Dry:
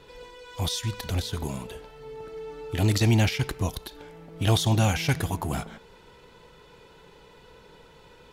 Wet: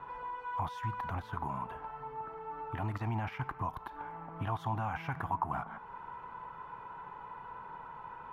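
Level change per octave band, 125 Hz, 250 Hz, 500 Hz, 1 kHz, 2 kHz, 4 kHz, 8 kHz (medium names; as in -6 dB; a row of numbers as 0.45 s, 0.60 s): -13.5 dB, -14.5 dB, -13.0 dB, +1.0 dB, -9.0 dB, -25.0 dB, under -30 dB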